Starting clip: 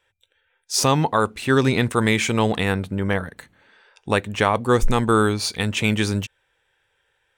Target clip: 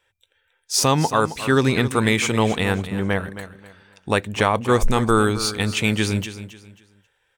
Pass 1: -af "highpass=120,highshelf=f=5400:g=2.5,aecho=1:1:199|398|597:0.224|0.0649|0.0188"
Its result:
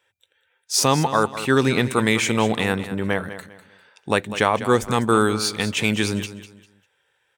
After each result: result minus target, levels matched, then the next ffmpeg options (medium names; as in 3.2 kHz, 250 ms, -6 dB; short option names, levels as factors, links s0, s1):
echo 70 ms early; 125 Hz band -2.5 dB
-af "highpass=120,highshelf=f=5400:g=2.5,aecho=1:1:269|538|807:0.224|0.0649|0.0188"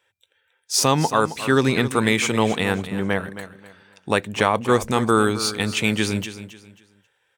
125 Hz band -2.5 dB
-af "highshelf=f=5400:g=2.5,aecho=1:1:269|538|807:0.224|0.0649|0.0188"